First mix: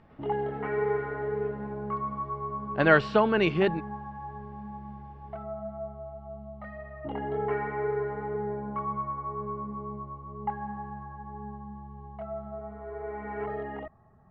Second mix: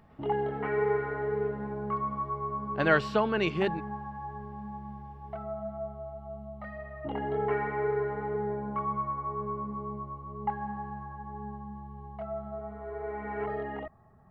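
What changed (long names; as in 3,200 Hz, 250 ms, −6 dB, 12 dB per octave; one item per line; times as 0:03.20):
speech −4.5 dB
master: remove high-frequency loss of the air 120 metres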